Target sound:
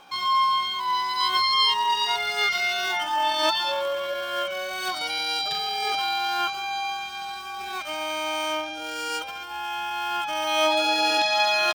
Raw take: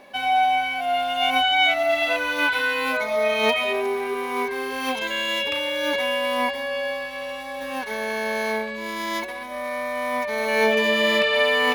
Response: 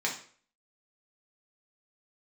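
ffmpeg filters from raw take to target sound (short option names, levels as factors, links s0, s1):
-af "equalizer=f=125:t=o:w=0.33:g=12,equalizer=f=250:t=o:w=0.33:g=-8,equalizer=f=6300:t=o:w=0.33:g=4,asetrate=62367,aresample=44100,atempo=0.707107,volume=0.794"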